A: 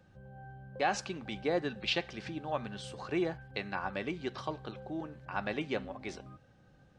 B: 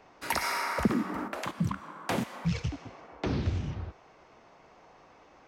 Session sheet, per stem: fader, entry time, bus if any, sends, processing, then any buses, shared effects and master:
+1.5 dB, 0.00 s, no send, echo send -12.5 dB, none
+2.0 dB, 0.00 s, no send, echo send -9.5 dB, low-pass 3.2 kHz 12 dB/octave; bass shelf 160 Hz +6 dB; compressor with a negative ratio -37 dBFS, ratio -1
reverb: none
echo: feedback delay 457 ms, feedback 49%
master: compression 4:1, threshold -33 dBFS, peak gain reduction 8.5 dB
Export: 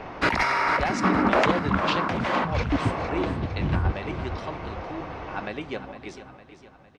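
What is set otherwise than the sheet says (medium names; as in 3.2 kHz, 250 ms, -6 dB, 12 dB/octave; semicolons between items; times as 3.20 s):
stem B +2.0 dB -> +12.0 dB; master: missing compression 4:1, threshold -33 dBFS, peak gain reduction 8.5 dB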